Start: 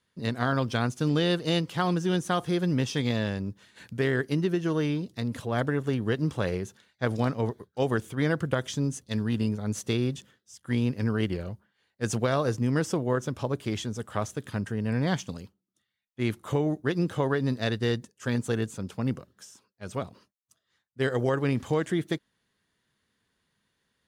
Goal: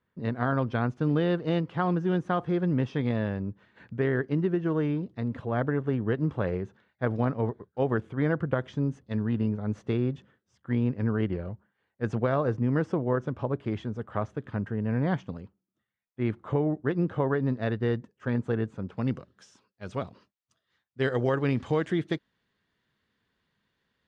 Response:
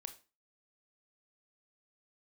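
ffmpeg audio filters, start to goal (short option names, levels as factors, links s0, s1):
-af "asetnsamples=n=441:p=0,asendcmd='18.97 lowpass f 4000',lowpass=1700"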